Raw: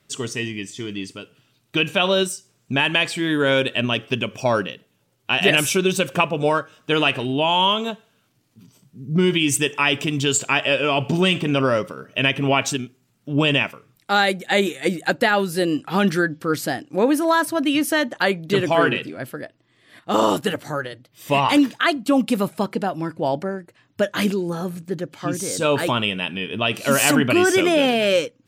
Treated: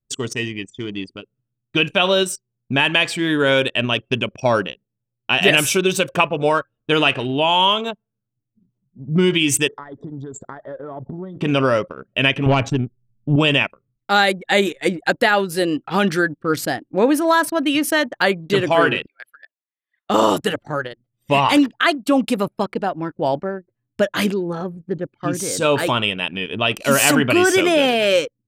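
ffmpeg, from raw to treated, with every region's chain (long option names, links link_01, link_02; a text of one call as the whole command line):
ffmpeg -i in.wav -filter_complex "[0:a]asettb=1/sr,asplit=3[link_01][link_02][link_03];[link_01]atrim=end=9.684[link_04];[link_02]atrim=start=9.68:end=11.41,asetpts=PTS-STARTPTS,afade=type=in:duration=0.004:curve=qsin,afade=type=out:start_time=1.726:duration=0.004:curve=qsin,highshelf=frequency=2800:gain=-9,acompressor=threshold=-31dB:ratio=4:attack=3.2:release=140:knee=1:detection=peak,asuperstop=centerf=2600:order=12:qfactor=2[link_05];[link_03]atrim=start=11.406[link_06];[link_04][link_05]acrossfade=duration=0.004:curve1=hsin:curve2=qsin[link_07];[link_07][link_06]acrossfade=duration=0.004:curve1=qsin:curve2=hsin,asettb=1/sr,asplit=3[link_08][link_09][link_10];[link_08]atrim=end=12.464[link_11];[link_09]atrim=start=12.46:end=13.36,asetpts=PTS-STARTPTS,afade=type=in:duration=0.004:curve=qsin,afade=type=out:start_time=0.896:duration=0.004:curve=qsin,aemphasis=mode=reproduction:type=riaa,aeval=exprs='(tanh(3.16*val(0)+0.25)-tanh(0.25))/3.16':channel_layout=same[link_12];[link_10]atrim=start=13.356[link_13];[link_11][link_12]acrossfade=duration=0.004:curve1=hsin:curve2=qsin[link_14];[link_14][link_13]acrossfade=duration=0.004:curve1=qsin:curve2=hsin,asettb=1/sr,asplit=3[link_15][link_16][link_17];[link_15]atrim=end=19.064[link_18];[link_16]atrim=start=19.06:end=20.1,asetpts=PTS-STARTPTS,afade=type=in:duration=0.004:curve=qsin,afade=type=out:start_time=1.036:duration=0.004:curve=qsin,highpass=1500,equalizer=frequency=4200:width_type=o:width=2.7:gain=2.5[link_19];[link_17]atrim=start=20.096[link_20];[link_18][link_19]acrossfade=duration=0.004:curve1=hsin:curve2=qsin[link_21];[link_21][link_20]acrossfade=duration=0.004:curve1=qsin:curve2=hsin,adynamicequalizer=threshold=0.02:dfrequency=200:dqfactor=1.2:tfrequency=200:tqfactor=1.2:attack=5:release=100:ratio=0.375:range=2.5:mode=cutabove:tftype=bell,anlmdn=15.8,volume=2.5dB" out.wav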